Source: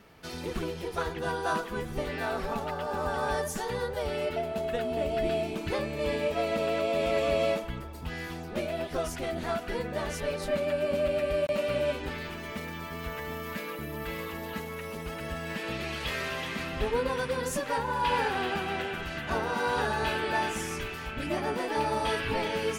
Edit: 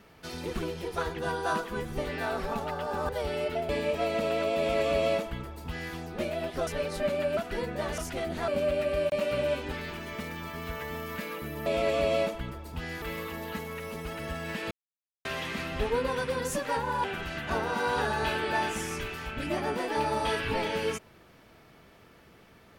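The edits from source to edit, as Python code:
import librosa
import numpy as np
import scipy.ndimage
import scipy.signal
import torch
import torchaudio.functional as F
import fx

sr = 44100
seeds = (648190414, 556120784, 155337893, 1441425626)

y = fx.edit(x, sr, fx.cut(start_s=3.09, length_s=0.81),
    fx.cut(start_s=4.5, length_s=1.56),
    fx.duplicate(start_s=6.95, length_s=1.36, to_s=14.03),
    fx.swap(start_s=9.04, length_s=0.5, other_s=10.15, other_length_s=0.7),
    fx.silence(start_s=15.72, length_s=0.54),
    fx.cut(start_s=18.05, length_s=0.79), tone=tone)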